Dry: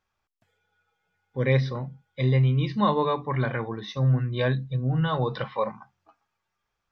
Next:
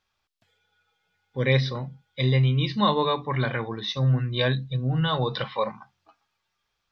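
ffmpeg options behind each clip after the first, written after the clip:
-af "equalizer=f=3900:w=0.97:g=9.5"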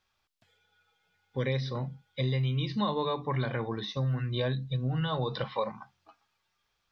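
-filter_complex "[0:a]acrossover=split=1100|5100[s0][s1][s2];[s0]acompressor=threshold=0.0398:ratio=4[s3];[s1]acompressor=threshold=0.00794:ratio=4[s4];[s2]acompressor=threshold=0.00398:ratio=4[s5];[s3][s4][s5]amix=inputs=3:normalize=0"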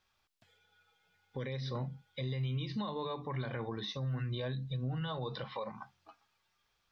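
-af "alimiter=level_in=1.88:limit=0.0631:level=0:latency=1:release=187,volume=0.531"

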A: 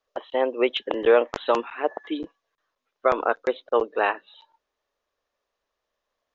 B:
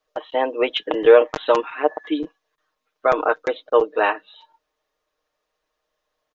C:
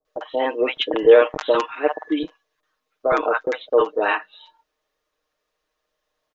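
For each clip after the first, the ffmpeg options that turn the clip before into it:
-af "aecho=1:1:6.5:0.61,volume=1.33"
-filter_complex "[0:a]acrossover=split=790[s0][s1];[s1]adelay=50[s2];[s0][s2]amix=inputs=2:normalize=0,volume=1.12"

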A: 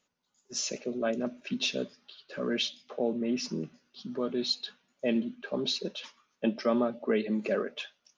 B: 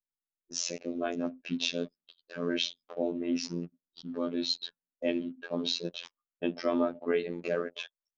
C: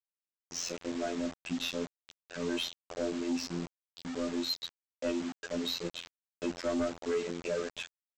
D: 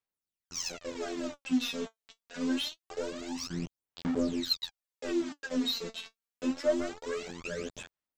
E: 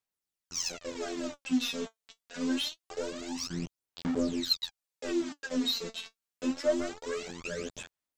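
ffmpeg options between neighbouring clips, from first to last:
-af "afftfilt=real='hypot(re,im)*cos(PI*b)':imag='0':win_size=2048:overlap=0.75,anlmdn=0.00631,volume=1.33"
-af "aresample=16000,acrusher=bits=6:mix=0:aa=0.000001,aresample=44100,asoftclip=type=tanh:threshold=0.0562"
-af "aphaser=in_gain=1:out_gain=1:delay=4.5:decay=0.75:speed=0.25:type=sinusoidal,volume=0.708"
-af "equalizer=f=7500:w=0.57:g=3"

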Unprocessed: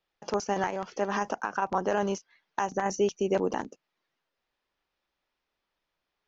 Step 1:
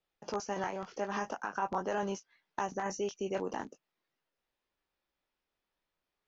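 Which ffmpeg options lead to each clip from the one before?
-filter_complex "[0:a]acrossover=split=650[s0][s1];[s0]alimiter=level_in=1.33:limit=0.0631:level=0:latency=1:release=312,volume=0.75[s2];[s1]flanger=delay=16:depth=5.3:speed=0.43[s3];[s2][s3]amix=inputs=2:normalize=0,volume=0.75"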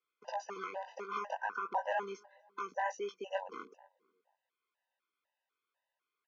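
-filter_complex "[0:a]highpass=650,lowpass=3000,asplit=2[s0][s1];[s1]adelay=243,lowpass=f=1300:p=1,volume=0.0668,asplit=2[s2][s3];[s3]adelay=243,lowpass=f=1300:p=1,volume=0.47,asplit=2[s4][s5];[s5]adelay=243,lowpass=f=1300:p=1,volume=0.47[s6];[s0][s2][s4][s6]amix=inputs=4:normalize=0,afftfilt=real='re*gt(sin(2*PI*2*pts/sr)*(1-2*mod(floor(b*sr/1024/510),2)),0)':imag='im*gt(sin(2*PI*2*pts/sr)*(1-2*mod(floor(b*sr/1024/510),2)),0)':win_size=1024:overlap=0.75,volume=1.68"

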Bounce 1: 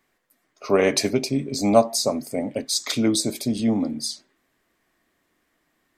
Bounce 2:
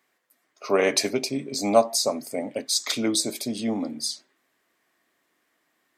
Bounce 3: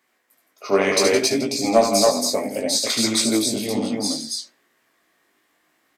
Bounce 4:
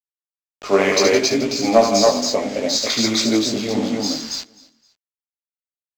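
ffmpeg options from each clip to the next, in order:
-af "highpass=f=400:p=1"
-af "aecho=1:1:72.89|166.2|277:0.562|0.316|0.794,acontrast=47,flanger=delay=17:depth=3.3:speed=0.65"
-af "aresample=16000,acrusher=bits=5:mix=0:aa=0.000001,aresample=44100,adynamicsmooth=sensitivity=7:basefreq=5300,aecho=1:1:259|518:0.075|0.027,volume=1.33"

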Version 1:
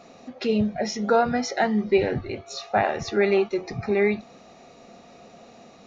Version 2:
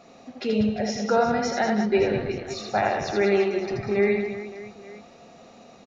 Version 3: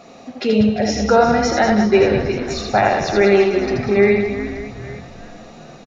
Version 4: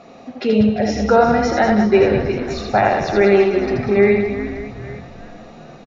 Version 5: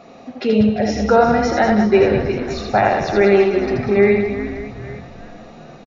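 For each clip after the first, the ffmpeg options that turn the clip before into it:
-af "aecho=1:1:80|192|348.8|568.3|875.6:0.631|0.398|0.251|0.158|0.1,volume=0.75"
-filter_complex "[0:a]asplit=6[s0][s1][s2][s3][s4][s5];[s1]adelay=402,afreqshift=-140,volume=0.168[s6];[s2]adelay=804,afreqshift=-280,volume=0.0871[s7];[s3]adelay=1206,afreqshift=-420,volume=0.0452[s8];[s4]adelay=1608,afreqshift=-560,volume=0.0237[s9];[s5]adelay=2010,afreqshift=-700,volume=0.0123[s10];[s0][s6][s7][s8][s9][s10]amix=inputs=6:normalize=0,volume=2.51"
-af "aemphasis=mode=reproduction:type=50fm"
-af "aresample=16000,aresample=44100"

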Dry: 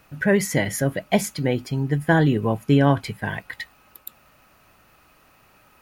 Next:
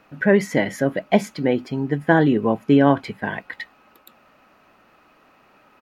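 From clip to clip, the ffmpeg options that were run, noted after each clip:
-af "firequalizer=gain_entry='entry(100,0);entry(220,13);entry(9400,-4)':delay=0.05:min_phase=1,volume=0.355"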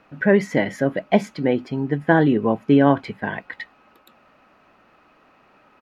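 -af "highshelf=f=7500:g=-12"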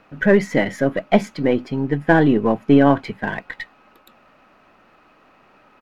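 -af "aeval=exprs='if(lt(val(0),0),0.708*val(0),val(0))':c=same,volume=1.5"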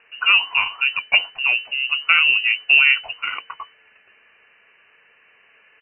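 -af "lowpass=f=2600:t=q:w=0.5098,lowpass=f=2600:t=q:w=0.6013,lowpass=f=2600:t=q:w=0.9,lowpass=f=2600:t=q:w=2.563,afreqshift=-3000,volume=0.841"

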